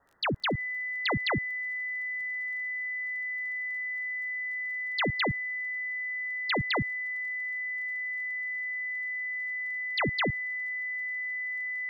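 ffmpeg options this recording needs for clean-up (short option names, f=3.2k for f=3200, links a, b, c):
-af "adeclick=t=4,bandreject=f=2k:w=30,agate=range=-21dB:threshold=-26dB"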